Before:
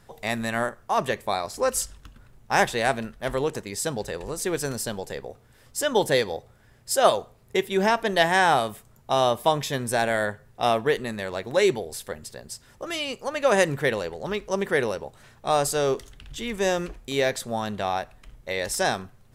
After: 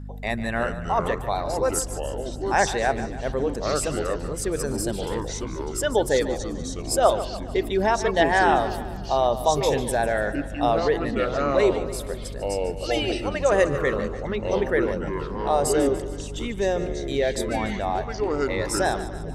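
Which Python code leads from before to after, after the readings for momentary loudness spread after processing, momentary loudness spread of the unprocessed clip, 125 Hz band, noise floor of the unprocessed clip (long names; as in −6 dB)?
9 LU, 13 LU, +4.0 dB, −56 dBFS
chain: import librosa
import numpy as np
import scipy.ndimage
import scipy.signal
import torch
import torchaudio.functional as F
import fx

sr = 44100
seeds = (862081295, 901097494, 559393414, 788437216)

p1 = fx.envelope_sharpen(x, sr, power=1.5)
p2 = fx.add_hum(p1, sr, base_hz=50, snr_db=10)
p3 = p2 + fx.echo_split(p2, sr, split_hz=370.0, low_ms=236, high_ms=146, feedback_pct=52, wet_db=-13.0, dry=0)
y = fx.echo_pitch(p3, sr, ms=262, semitones=-5, count=3, db_per_echo=-6.0)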